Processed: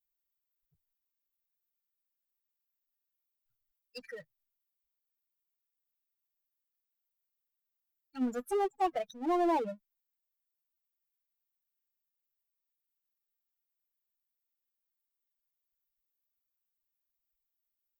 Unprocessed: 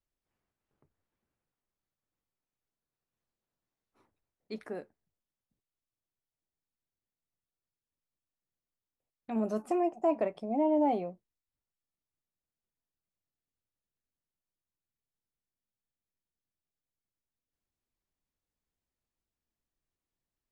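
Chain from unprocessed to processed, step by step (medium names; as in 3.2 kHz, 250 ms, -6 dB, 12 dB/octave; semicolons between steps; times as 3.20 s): expander on every frequency bin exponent 3; power-law waveshaper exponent 0.7; tape speed +14%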